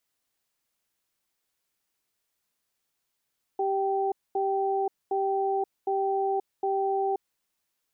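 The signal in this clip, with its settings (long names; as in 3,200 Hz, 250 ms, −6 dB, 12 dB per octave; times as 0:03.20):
tone pair in a cadence 391 Hz, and 778 Hz, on 0.53 s, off 0.23 s, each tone −26.5 dBFS 3.61 s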